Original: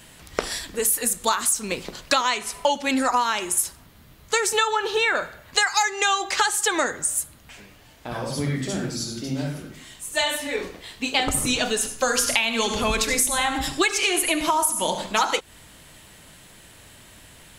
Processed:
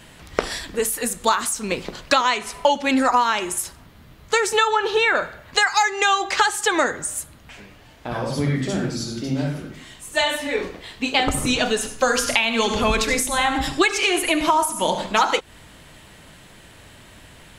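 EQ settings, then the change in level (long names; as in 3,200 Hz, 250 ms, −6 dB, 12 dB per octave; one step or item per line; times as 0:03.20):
high-shelf EQ 5,500 Hz −10 dB
+4.0 dB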